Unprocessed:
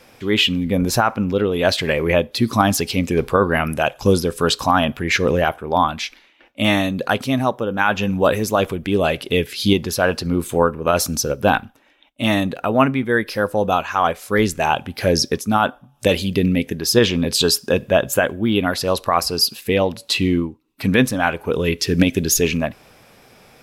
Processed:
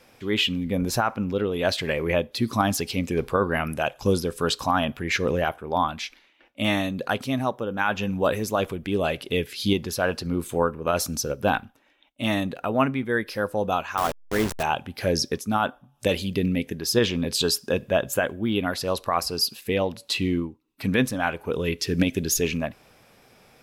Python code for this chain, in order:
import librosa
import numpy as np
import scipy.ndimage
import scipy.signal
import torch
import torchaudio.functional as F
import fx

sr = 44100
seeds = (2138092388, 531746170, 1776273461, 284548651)

y = fx.delta_hold(x, sr, step_db=-17.5, at=(13.97, 14.63))
y = y * librosa.db_to_amplitude(-6.5)